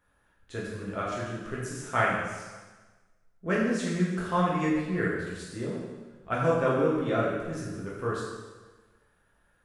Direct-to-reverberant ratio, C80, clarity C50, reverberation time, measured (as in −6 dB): −6.5 dB, 2.5 dB, 0.5 dB, 1.3 s